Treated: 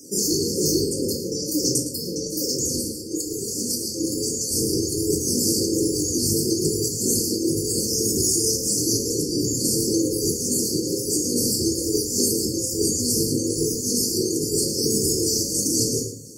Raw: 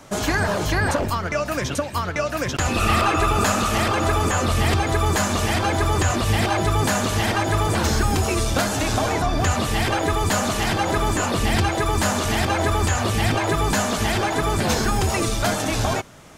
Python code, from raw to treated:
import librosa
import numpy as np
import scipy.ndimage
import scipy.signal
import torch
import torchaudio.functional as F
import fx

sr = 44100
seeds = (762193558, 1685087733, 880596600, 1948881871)

p1 = fx.spec_dropout(x, sr, seeds[0], share_pct=22)
p2 = scipy.signal.sosfilt(scipy.signal.butter(2, 140.0, 'highpass', fs=sr, output='sos'), p1)
p3 = fx.bass_treble(p2, sr, bass_db=-7, treble_db=8)
p4 = fx.over_compress(p3, sr, threshold_db=-24.0, ratio=-0.5)
p5 = fx.brickwall_bandstop(p4, sr, low_hz=550.0, high_hz=4300.0)
p6 = p5 + fx.echo_single(p5, sr, ms=111, db=-11.0, dry=0)
y = fx.room_shoebox(p6, sr, seeds[1], volume_m3=600.0, walls='furnished', distance_m=3.0)